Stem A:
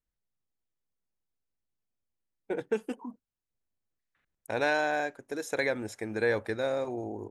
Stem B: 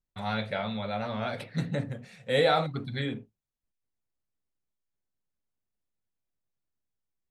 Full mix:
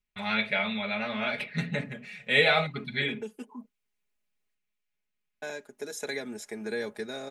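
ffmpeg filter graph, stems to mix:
-filter_complex "[0:a]lowshelf=f=170:g=-10.5,acrossover=split=340|3000[a][b][c];[b]acompressor=threshold=-48dB:ratio=2[d];[a][d][c]amix=inputs=3:normalize=0,adelay=500,volume=1dB,asplit=3[e][f][g];[e]atrim=end=4.55,asetpts=PTS-STARTPTS,afade=t=out:st=4.546:d=0.004:c=hsin[h];[f]atrim=start=4.55:end=5.42,asetpts=PTS-STARTPTS,volume=0[i];[g]atrim=start=5.42,asetpts=PTS-STARTPTS,afade=t=in:d=0.004:c=hsin[j];[h][i][j]concat=n=3:v=0:a=1[k];[1:a]equalizer=f=2.4k:t=o:w=1:g=14.5,volume=-3.5dB,asplit=2[l][m];[m]apad=whole_len=344278[n];[k][n]sidechaincompress=threshold=-32dB:ratio=3:attack=5.4:release=943[o];[o][l]amix=inputs=2:normalize=0,aecho=1:1:4.8:0.77"

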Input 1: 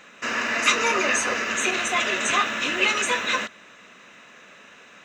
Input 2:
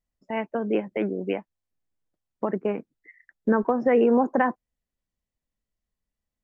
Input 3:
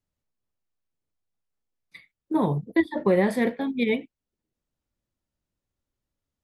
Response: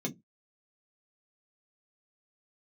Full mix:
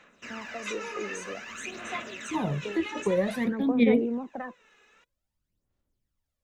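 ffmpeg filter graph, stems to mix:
-filter_complex "[0:a]volume=-15dB[a];[1:a]volume=-11dB[b];[2:a]volume=-2.5dB[c];[a][b][c]amix=inputs=3:normalize=0,acrossover=split=300[d][e];[e]acompressor=threshold=-42dB:ratio=1.5[f];[d][f]amix=inputs=2:normalize=0,aphaser=in_gain=1:out_gain=1:delay=2.4:decay=0.61:speed=0.52:type=sinusoidal"

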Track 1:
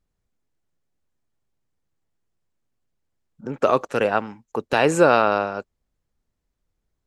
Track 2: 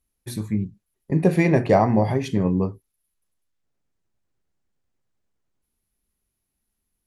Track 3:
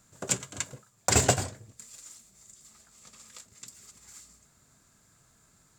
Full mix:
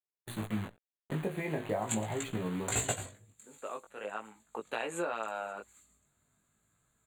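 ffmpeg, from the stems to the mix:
-filter_complex "[0:a]highpass=190,volume=-6.5dB,afade=t=in:st=3.96:d=0.53:silence=0.298538[a];[1:a]acrusher=bits=6:dc=4:mix=0:aa=0.000001,highshelf=f=4.2k:g=-10,agate=range=-18dB:threshold=-40dB:ratio=16:detection=peak,volume=0dB[b];[2:a]adynamicequalizer=threshold=0.00501:dfrequency=1600:dqfactor=0.7:tfrequency=1600:tqfactor=0.7:attack=5:release=100:ratio=0.375:range=2.5:mode=boostabove:tftype=highshelf,adelay=1600,volume=-8dB[c];[a][b]amix=inputs=2:normalize=0,lowshelf=f=410:g=-9,acompressor=threshold=-28dB:ratio=6,volume=0dB[d];[c][d]amix=inputs=2:normalize=0,asuperstop=centerf=5300:order=4:qfactor=2,flanger=delay=17.5:depth=2.4:speed=0.41"

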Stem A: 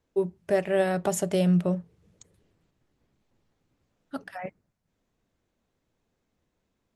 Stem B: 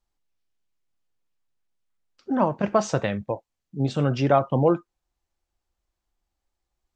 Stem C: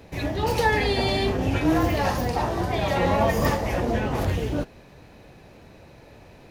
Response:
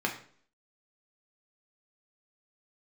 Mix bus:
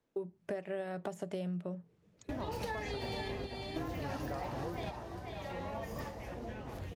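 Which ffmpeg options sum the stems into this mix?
-filter_complex "[0:a]highshelf=f=5k:g=-7,deesser=0.85,highpass=130,volume=-3dB[a];[1:a]volume=-17.5dB,asplit=2[b][c];[2:a]adelay=2050,volume=-11dB,asplit=2[d][e];[e]volume=-8dB[f];[c]apad=whole_len=377185[g];[d][g]sidechaingate=range=-30dB:threshold=-56dB:ratio=16:detection=peak[h];[f]aecho=0:1:490:1[i];[a][b][h][i]amix=inputs=4:normalize=0,acompressor=threshold=-35dB:ratio=10"

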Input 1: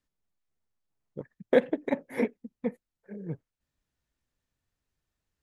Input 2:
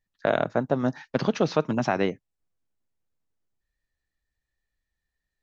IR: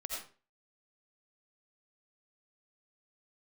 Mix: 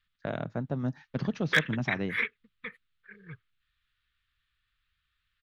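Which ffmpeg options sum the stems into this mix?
-filter_complex "[0:a]firequalizer=gain_entry='entry(100,0);entry(250,-22);entry(430,-12);entry(660,-28);entry(1200,11);entry(2100,9);entry(3500,10);entry(5900,-16)':delay=0.05:min_phase=1,asoftclip=type=hard:threshold=-14dB,volume=-1.5dB[a];[1:a]bass=f=250:g=14,treble=f=4k:g=-9,volume=-13.5dB[b];[a][b]amix=inputs=2:normalize=0,highshelf=f=2.6k:g=9"

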